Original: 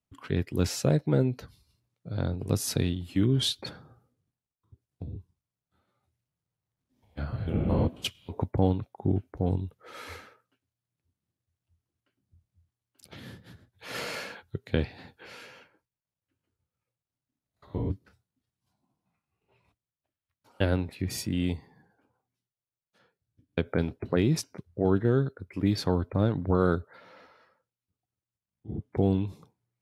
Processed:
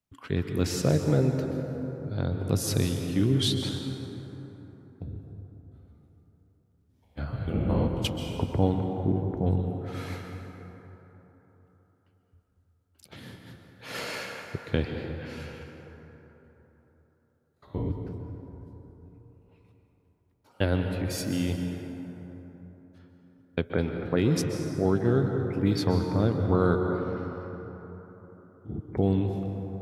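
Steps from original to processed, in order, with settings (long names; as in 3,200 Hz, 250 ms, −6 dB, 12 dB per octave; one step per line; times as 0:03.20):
dense smooth reverb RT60 3.8 s, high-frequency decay 0.4×, pre-delay 115 ms, DRR 4 dB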